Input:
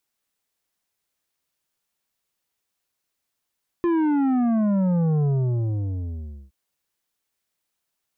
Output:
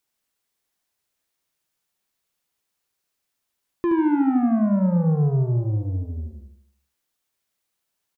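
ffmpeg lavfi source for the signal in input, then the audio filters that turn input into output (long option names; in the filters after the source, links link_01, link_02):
-f lavfi -i "aevalsrc='0.112*clip((2.67-t)/1.27,0,1)*tanh(2.82*sin(2*PI*350*2.67/log(65/350)*(exp(log(65/350)*t/2.67)-1)))/tanh(2.82)':duration=2.67:sample_rate=44100"
-af "aecho=1:1:74|148|222|296|370|444:0.473|0.227|0.109|0.0523|0.0251|0.0121"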